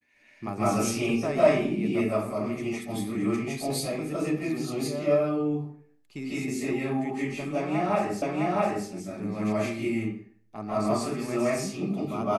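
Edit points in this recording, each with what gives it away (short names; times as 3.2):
8.22 repeat of the last 0.66 s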